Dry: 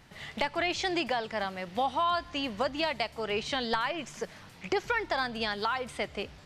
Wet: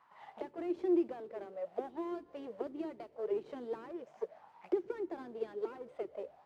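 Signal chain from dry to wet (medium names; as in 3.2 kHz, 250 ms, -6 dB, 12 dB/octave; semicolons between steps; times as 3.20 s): Chebyshev shaper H 5 -25 dB, 8 -15 dB, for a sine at -15.5 dBFS; modulation noise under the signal 11 dB; auto-wah 350–1100 Hz, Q 7.2, down, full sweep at -25.5 dBFS; trim +3 dB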